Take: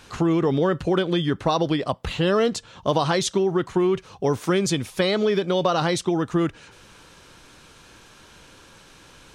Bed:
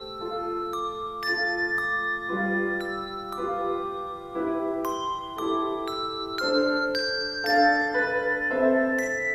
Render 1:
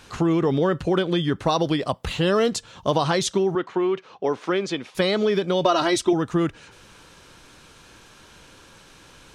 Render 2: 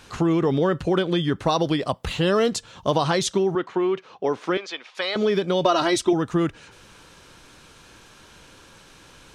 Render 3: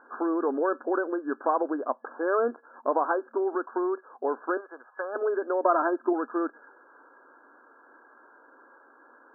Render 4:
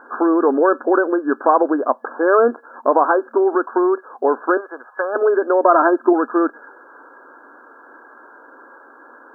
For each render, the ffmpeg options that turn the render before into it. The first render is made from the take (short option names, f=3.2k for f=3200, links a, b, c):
-filter_complex "[0:a]asettb=1/sr,asplit=3[a][b][c];[a]atrim=end=1.414[d];[b]atrim=start=1.41:end=2.9,asetpts=PTS-STARTPTS,afade=t=in:d=0.004:c=qsin,afade=t=out:st=1.486:d=0.004:c=qsin,highshelf=f=6.4k:g=6[e];[c]atrim=start=2.896[f];[d][e]acrossfade=d=0.004:c1=hsin:c2=qsin[g];[g][f]acrossfade=d=0.004:c1=qsin:c2=hsin,asettb=1/sr,asplit=3[h][i][j];[h]atrim=end=3.554[k];[i]atrim=start=3.55:end=4.95,asetpts=PTS-STARTPTS,afade=t=in:d=0.004:c=qsin,afade=t=out:st=1.396:d=0.004:c=qsin,highpass=300,lowpass=3.7k[l];[j]atrim=start=4.946[m];[k][l]acrossfade=d=0.004:c1=hsin:c2=qsin[n];[n][m]acrossfade=d=0.004:c1=qsin:c2=hsin,asettb=1/sr,asplit=3[o][p][q];[o]atrim=end=5.654[r];[p]atrim=start=5.65:end=6.13,asetpts=PTS-STARTPTS,afade=t=in:d=0.004:c=qsin,afade=t=out:st=0.476:d=0.004:c=qsin,aecho=1:1:3.1:0.84,atrim=end_sample=21168[s];[q]atrim=start=6.126[t];[r][s]acrossfade=d=0.004:c1=hsin:c2=qsin[u];[u][t]acrossfade=d=0.004:c1=qsin:c2=hsin"
-filter_complex "[0:a]asettb=1/sr,asplit=3[a][b][c];[a]atrim=end=4.574[d];[b]atrim=start=4.57:end=5.16,asetpts=PTS-STARTPTS,afade=t=in:d=0.004:c=qsin,afade=t=out:st=0.586:d=0.004:c=qsin,highpass=760,lowpass=5.3k[e];[c]atrim=start=5.156[f];[d][e]acrossfade=d=0.004:c1=hsin:c2=qsin[g];[g][f]acrossfade=d=0.004:c1=qsin:c2=hsin"
-af "afftfilt=real='re*between(b*sr/4096,230,1700)':imag='im*between(b*sr/4096,230,1700)':win_size=4096:overlap=0.75,lowshelf=f=460:g=-9.5"
-af "volume=11.5dB,alimiter=limit=-2dB:level=0:latency=1"